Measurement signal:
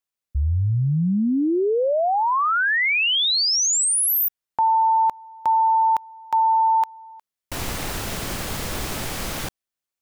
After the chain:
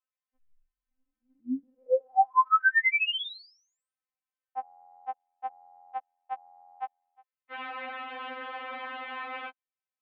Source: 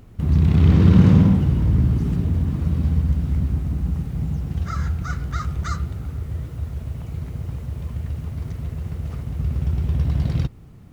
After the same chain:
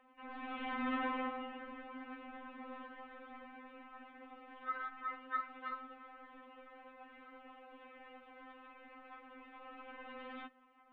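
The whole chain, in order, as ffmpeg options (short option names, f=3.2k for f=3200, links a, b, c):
-filter_complex "[0:a]highpass=f=210:t=q:w=0.5412,highpass=f=210:t=q:w=1.307,lowpass=f=3.5k:t=q:w=0.5176,lowpass=f=3.5k:t=q:w=0.7071,lowpass=f=3.5k:t=q:w=1.932,afreqshift=-79,acrossover=split=560 2700:gain=0.158 1 0.0708[a][b][c];[a][b][c]amix=inputs=3:normalize=0,afftfilt=real='re*3.46*eq(mod(b,12),0)':imag='im*3.46*eq(mod(b,12),0)':win_size=2048:overlap=0.75"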